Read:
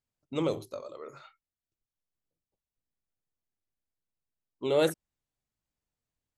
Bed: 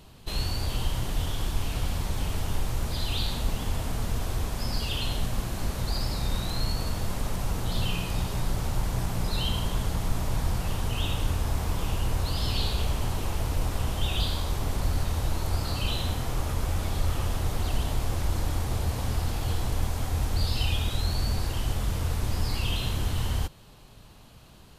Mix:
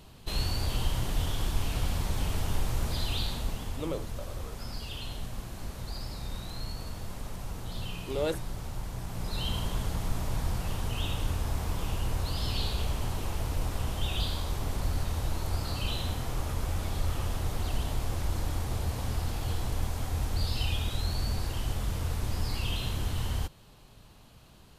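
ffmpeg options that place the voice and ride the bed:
ffmpeg -i stem1.wav -i stem2.wav -filter_complex "[0:a]adelay=3450,volume=-5.5dB[link_01];[1:a]volume=4.5dB,afade=type=out:start_time=2.91:duration=0.95:silence=0.398107,afade=type=in:start_time=9.03:duration=0.51:silence=0.530884[link_02];[link_01][link_02]amix=inputs=2:normalize=0" out.wav

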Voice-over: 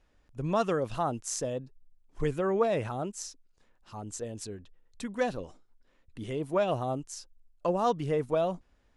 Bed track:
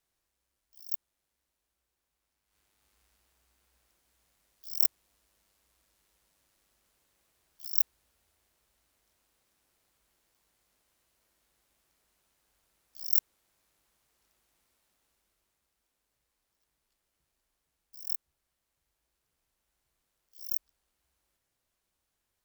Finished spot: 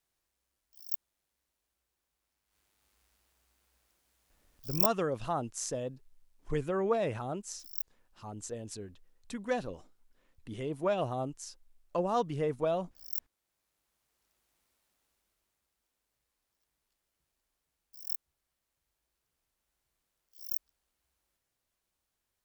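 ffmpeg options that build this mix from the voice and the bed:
ffmpeg -i stem1.wav -i stem2.wav -filter_complex "[0:a]adelay=4300,volume=-3dB[link_01];[1:a]volume=7.5dB,afade=type=out:start_time=4.7:duration=0.43:silence=0.316228,afade=type=in:start_time=13.33:duration=1.24:silence=0.375837[link_02];[link_01][link_02]amix=inputs=2:normalize=0" out.wav

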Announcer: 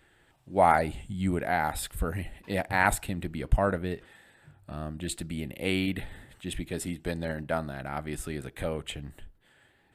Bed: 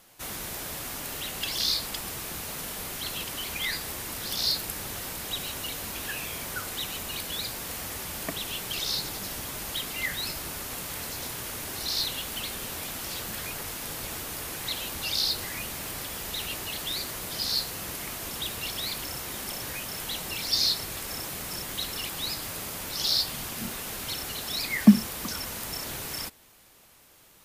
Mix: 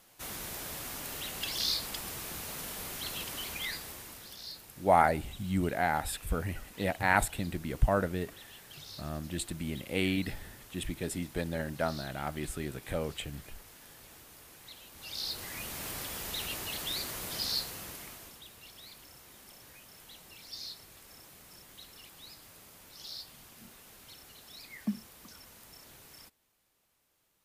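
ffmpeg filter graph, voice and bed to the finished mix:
ffmpeg -i stem1.wav -i stem2.wav -filter_complex "[0:a]adelay=4300,volume=-2dB[link_01];[1:a]volume=10dB,afade=type=out:start_time=3.4:duration=0.99:silence=0.211349,afade=type=in:start_time=14.92:duration=0.94:silence=0.188365,afade=type=out:start_time=17.36:duration=1.05:silence=0.177828[link_02];[link_01][link_02]amix=inputs=2:normalize=0" out.wav

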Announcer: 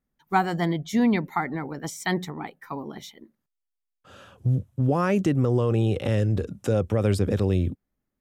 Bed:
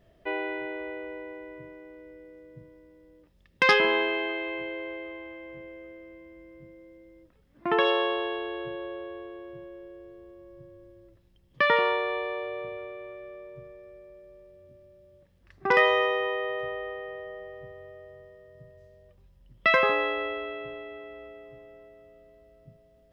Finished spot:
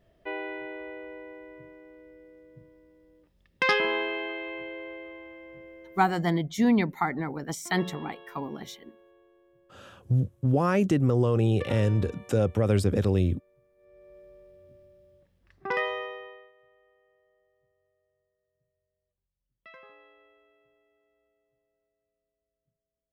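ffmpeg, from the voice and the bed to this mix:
ffmpeg -i stem1.wav -i stem2.wav -filter_complex "[0:a]adelay=5650,volume=-1dB[link_01];[1:a]volume=15.5dB,afade=type=out:start_time=6.09:duration=0.21:silence=0.149624,afade=type=in:start_time=13.75:duration=0.43:silence=0.112202,afade=type=out:start_time=14.79:duration=1.73:silence=0.0375837[link_02];[link_01][link_02]amix=inputs=2:normalize=0" out.wav

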